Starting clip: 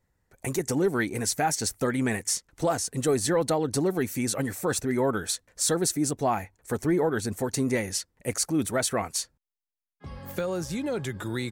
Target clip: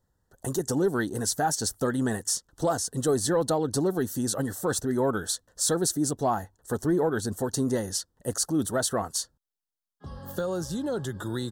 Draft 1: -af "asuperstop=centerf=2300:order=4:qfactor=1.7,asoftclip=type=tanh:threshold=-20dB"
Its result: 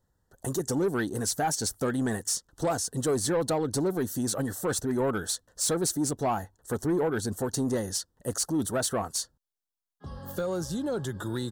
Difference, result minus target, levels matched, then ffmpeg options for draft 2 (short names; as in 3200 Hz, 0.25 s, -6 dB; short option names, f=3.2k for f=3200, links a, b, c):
soft clip: distortion +20 dB
-af "asuperstop=centerf=2300:order=4:qfactor=1.7,asoftclip=type=tanh:threshold=-8.5dB"